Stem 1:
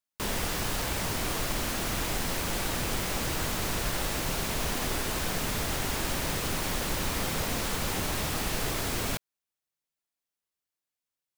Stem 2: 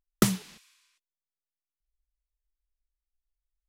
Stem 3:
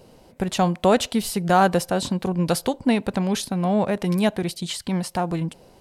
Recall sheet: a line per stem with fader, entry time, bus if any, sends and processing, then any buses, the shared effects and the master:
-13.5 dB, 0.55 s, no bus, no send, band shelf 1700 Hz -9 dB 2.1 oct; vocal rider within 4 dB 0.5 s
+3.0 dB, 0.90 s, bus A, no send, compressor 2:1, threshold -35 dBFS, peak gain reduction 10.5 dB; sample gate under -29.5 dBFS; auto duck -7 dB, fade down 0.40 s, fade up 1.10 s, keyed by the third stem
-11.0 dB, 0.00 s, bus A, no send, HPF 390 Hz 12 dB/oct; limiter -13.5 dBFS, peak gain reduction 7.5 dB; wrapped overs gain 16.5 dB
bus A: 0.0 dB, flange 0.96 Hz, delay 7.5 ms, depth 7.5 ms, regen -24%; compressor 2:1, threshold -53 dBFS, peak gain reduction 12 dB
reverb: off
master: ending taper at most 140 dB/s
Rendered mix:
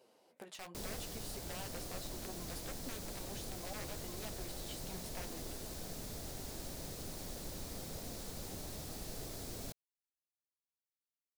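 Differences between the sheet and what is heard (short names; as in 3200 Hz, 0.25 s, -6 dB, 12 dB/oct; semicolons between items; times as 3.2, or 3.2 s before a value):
stem 2: muted; master: missing ending taper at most 140 dB/s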